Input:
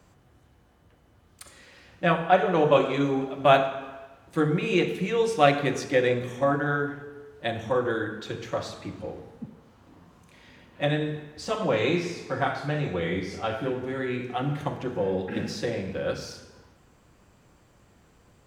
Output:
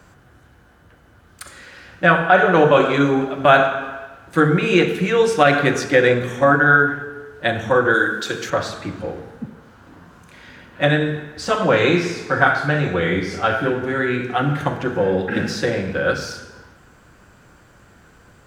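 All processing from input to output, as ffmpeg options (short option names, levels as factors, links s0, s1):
-filter_complex "[0:a]asettb=1/sr,asplit=3[s0][s1][s2];[s0]atrim=end=7.944[s3];[s1]atrim=start=7.94:end=8.5,asetpts=PTS-STARTPTS,afade=t=in:d=0.004:c=qsin,afade=t=out:st=0.556:d=0.004:c=qsin,highpass=160,bass=f=250:g=-1,treble=f=4000:g=10,bandreject=f=880:w=14[s4];[s2]atrim=start=8.496[s5];[s3][s4]acrossfade=d=0.004:c1=hsin:c2=qsin[s6];[s6][s5]acrossfade=d=0.004:c1=qsin:c2=hsin,equalizer=f=1500:t=o:w=0.42:g=10,alimiter=level_in=2.82:limit=0.891:release=50:level=0:latency=1,volume=0.891"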